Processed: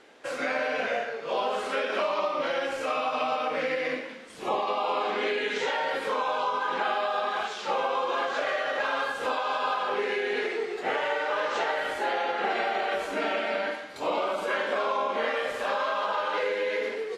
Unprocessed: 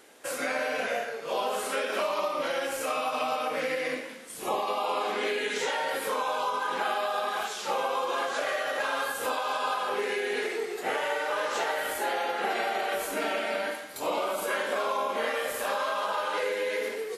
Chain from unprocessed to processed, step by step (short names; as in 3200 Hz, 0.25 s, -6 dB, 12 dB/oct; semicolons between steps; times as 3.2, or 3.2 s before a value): LPF 4300 Hz 12 dB/oct; gain +1.5 dB